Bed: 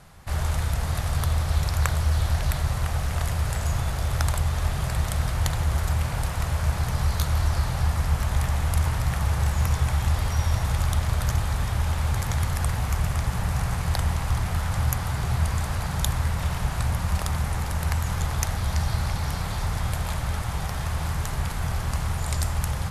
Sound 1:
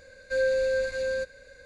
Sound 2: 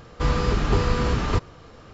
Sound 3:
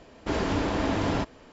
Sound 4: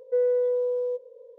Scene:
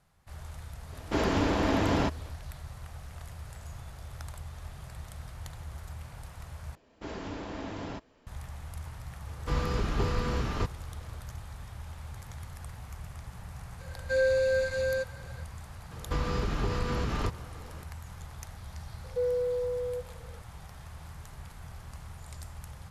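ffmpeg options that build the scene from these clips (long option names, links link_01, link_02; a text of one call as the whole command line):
ffmpeg -i bed.wav -i cue0.wav -i cue1.wav -i cue2.wav -i cue3.wav -filter_complex "[3:a]asplit=2[link_01][link_02];[2:a]asplit=2[link_03][link_04];[0:a]volume=-18dB[link_05];[link_04]acompressor=threshold=-27dB:ratio=2.5:attack=11:release=195:knee=1:detection=peak[link_06];[link_05]asplit=2[link_07][link_08];[link_07]atrim=end=6.754[link_09];[link_02]atrim=end=1.52,asetpts=PTS-STARTPTS,volume=-12dB[link_10];[link_08]atrim=start=8.266[link_11];[link_01]atrim=end=1.52,asetpts=PTS-STARTPTS,afade=type=in:duration=0.1,afade=type=out:start_time=1.42:duration=0.1,adelay=850[link_12];[link_03]atrim=end=1.93,asetpts=PTS-STARTPTS,volume=-8dB,afade=type=in:duration=0.004:curve=hsin,afade=type=out:start_time=1.926:duration=0.004:curve=hsin,adelay=9270[link_13];[1:a]atrim=end=1.65,asetpts=PTS-STARTPTS,volume=-0.5dB,afade=type=in:duration=0.004:curve=hsin,afade=type=out:start_time=1.646:duration=0.004:curve=hsin,adelay=13790[link_14];[link_06]atrim=end=1.93,asetpts=PTS-STARTPTS,volume=-2.5dB,afade=type=in:duration=0.004:curve=hsin,afade=type=out:start_time=1.926:duration=0.004:curve=hsin,adelay=15910[link_15];[4:a]atrim=end=1.38,asetpts=PTS-STARTPTS,volume=-6dB,afade=type=in:duration=0.004:curve=hsin,afade=type=out:start_time=1.376:duration=0.004:curve=hsin,adelay=19040[link_16];[link_09][link_10]acrossfade=duration=0.004:curve1=hsin:curve2=hsin[link_17];[link_17][link_11]acrossfade=duration=0.004:curve1=hsin:curve2=hsin[link_18];[link_18][link_12][link_13][link_14][link_15][link_16]amix=inputs=6:normalize=0" out.wav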